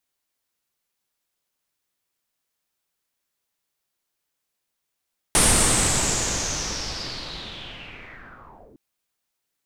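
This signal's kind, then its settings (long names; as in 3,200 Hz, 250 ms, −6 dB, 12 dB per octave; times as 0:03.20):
filter sweep on noise pink, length 3.41 s lowpass, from 9,400 Hz, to 290 Hz, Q 5.4, linear, gain ramp −33 dB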